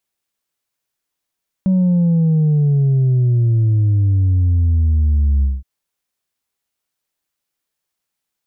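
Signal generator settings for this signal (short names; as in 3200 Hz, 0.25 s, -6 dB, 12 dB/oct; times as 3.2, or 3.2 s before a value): sub drop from 190 Hz, over 3.97 s, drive 2 dB, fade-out 0.20 s, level -11.5 dB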